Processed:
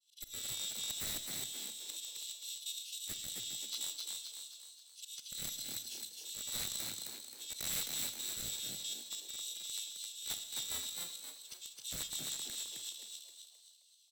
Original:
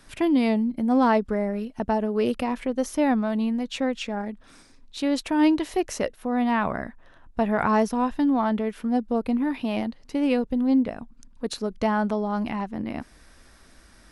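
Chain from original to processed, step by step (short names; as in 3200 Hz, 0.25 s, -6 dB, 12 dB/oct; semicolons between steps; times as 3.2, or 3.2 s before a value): FFT order left unsorted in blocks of 128 samples; steep high-pass 2100 Hz 48 dB/oct; expander -50 dBFS; LPF 3900 Hz 12 dB/oct; auto swell 0.115 s; in parallel at -3 dB: compressor 16:1, threshold -47 dBFS, peak gain reduction 19.5 dB; on the sum: wrapped overs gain 28 dB; formant shift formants +6 st; rotary speaker horn 1 Hz, later 7 Hz, at 9.24; soft clip -21 dBFS, distortion -29 dB; on a send: frequency-shifting echo 0.263 s, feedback 46%, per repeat +97 Hz, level -3 dB; on the sum: Schroeder reverb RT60 1.3 s, combs from 27 ms, DRR 11 dB; gain -2 dB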